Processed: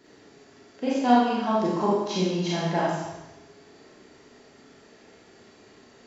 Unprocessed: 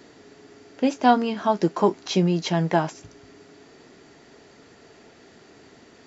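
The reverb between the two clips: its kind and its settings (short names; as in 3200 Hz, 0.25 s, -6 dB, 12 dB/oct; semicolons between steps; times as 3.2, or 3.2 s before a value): Schroeder reverb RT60 1 s, combs from 29 ms, DRR -6.5 dB; gain -9 dB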